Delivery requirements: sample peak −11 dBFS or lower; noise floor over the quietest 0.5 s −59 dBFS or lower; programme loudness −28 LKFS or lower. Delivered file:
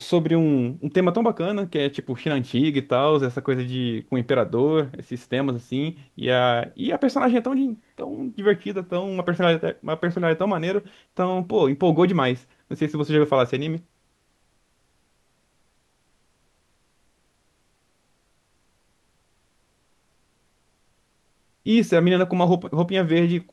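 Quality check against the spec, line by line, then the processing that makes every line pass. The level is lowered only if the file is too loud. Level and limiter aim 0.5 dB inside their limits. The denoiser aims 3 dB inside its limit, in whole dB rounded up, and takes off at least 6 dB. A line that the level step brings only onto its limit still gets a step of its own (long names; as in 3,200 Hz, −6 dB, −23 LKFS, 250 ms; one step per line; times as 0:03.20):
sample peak −6.0 dBFS: out of spec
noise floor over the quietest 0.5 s −66 dBFS: in spec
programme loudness −22.5 LKFS: out of spec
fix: level −6 dB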